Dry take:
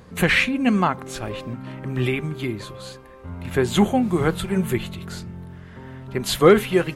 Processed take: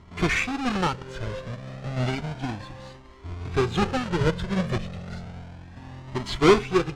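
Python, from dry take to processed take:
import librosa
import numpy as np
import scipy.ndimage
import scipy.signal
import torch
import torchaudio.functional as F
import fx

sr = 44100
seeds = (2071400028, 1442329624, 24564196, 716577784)

y = fx.halfwave_hold(x, sr)
y = fx.air_absorb(y, sr, metres=110.0)
y = fx.comb_cascade(y, sr, direction='rising', hz=0.32)
y = y * 10.0 ** (-3.0 / 20.0)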